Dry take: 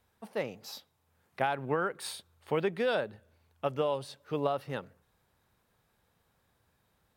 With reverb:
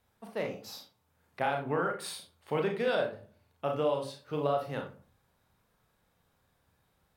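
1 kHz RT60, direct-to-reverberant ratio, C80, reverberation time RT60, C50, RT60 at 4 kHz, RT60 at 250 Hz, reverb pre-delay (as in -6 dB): 0.40 s, 2.0 dB, 14.5 dB, 0.40 s, 8.0 dB, 0.25 s, 0.50 s, 34 ms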